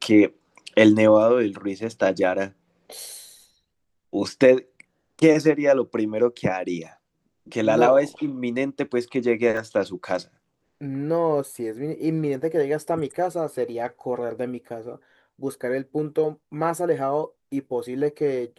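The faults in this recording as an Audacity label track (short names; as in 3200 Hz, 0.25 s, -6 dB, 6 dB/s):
9.570000	9.570000	gap 3 ms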